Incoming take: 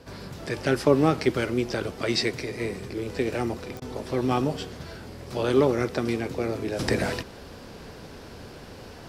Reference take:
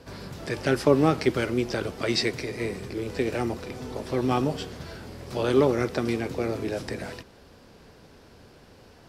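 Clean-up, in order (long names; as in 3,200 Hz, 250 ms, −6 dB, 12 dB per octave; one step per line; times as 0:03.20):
click removal
repair the gap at 0:03.80, 16 ms
level correction −9 dB, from 0:06.79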